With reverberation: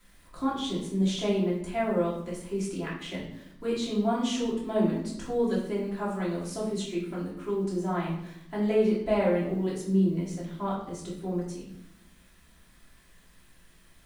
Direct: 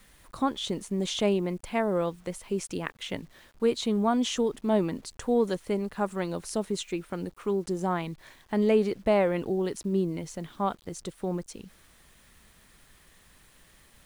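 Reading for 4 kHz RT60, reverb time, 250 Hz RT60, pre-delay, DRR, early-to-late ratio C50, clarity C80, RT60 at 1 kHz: 0.60 s, 0.80 s, 1.2 s, 3 ms, −7.5 dB, 4.0 dB, 7.5 dB, 0.70 s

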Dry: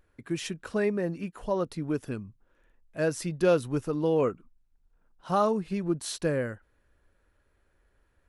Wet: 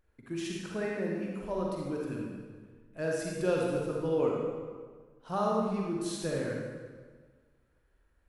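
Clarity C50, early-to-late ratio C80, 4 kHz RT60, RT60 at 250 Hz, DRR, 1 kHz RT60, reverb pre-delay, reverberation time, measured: −1.5 dB, 1.5 dB, 1.2 s, 1.7 s, −2.5 dB, 1.5 s, 39 ms, 1.6 s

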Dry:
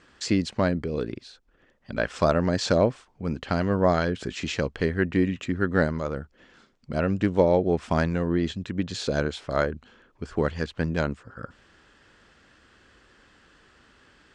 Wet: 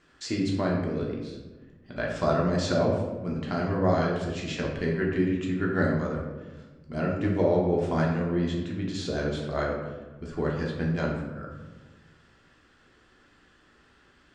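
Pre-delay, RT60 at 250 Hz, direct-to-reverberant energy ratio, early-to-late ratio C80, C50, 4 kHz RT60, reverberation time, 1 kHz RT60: 3 ms, 1.8 s, −2.5 dB, 5.5 dB, 3.0 dB, 0.65 s, 1.2 s, 1.1 s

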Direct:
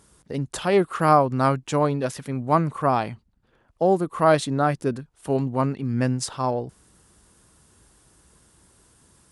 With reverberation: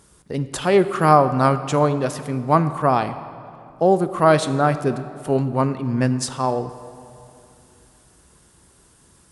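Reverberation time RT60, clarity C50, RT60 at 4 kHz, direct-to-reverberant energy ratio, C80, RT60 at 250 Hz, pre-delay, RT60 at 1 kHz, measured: 2.6 s, 12.5 dB, 1.7 s, 11.0 dB, 13.0 dB, 2.8 s, 3 ms, 2.6 s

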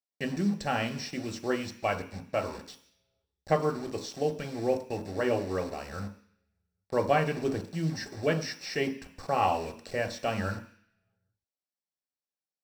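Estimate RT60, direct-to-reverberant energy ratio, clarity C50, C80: 0.50 s, 4.5 dB, 12.5 dB, 15.5 dB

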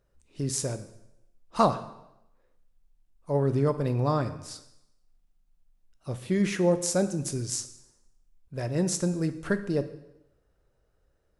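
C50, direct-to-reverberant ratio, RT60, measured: 13.0 dB, 10.0 dB, 0.85 s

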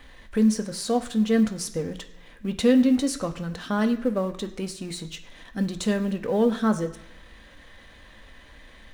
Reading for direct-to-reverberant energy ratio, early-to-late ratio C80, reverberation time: 5.5 dB, 15.5 dB, 1.0 s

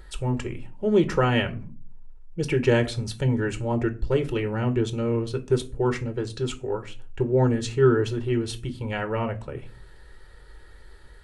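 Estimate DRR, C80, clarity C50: 7.5 dB, 23.0 dB, 18.0 dB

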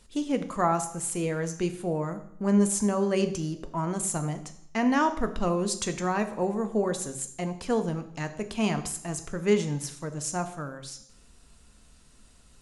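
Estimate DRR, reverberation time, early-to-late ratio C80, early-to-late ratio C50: 8.0 dB, 0.70 s, 15.0 dB, 12.5 dB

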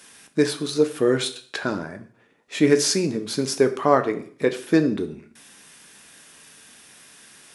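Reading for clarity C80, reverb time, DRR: 17.5 dB, 0.50 s, 7.0 dB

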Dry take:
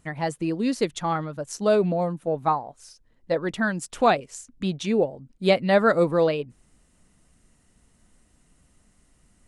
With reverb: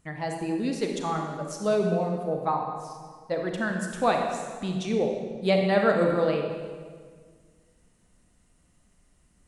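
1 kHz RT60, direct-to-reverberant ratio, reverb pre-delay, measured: 1.6 s, 2.0 dB, 30 ms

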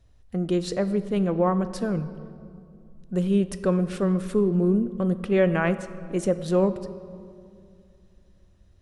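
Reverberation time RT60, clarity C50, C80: 2.4 s, 13.0 dB, 14.5 dB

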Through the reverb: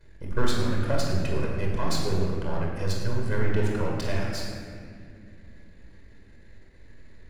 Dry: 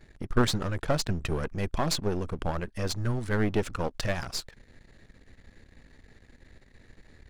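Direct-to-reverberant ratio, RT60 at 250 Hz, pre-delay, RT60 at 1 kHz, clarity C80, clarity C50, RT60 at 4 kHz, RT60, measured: −2.5 dB, 3.8 s, 22 ms, 2.0 s, 2.0 dB, 0.0 dB, 1.5 s, 2.3 s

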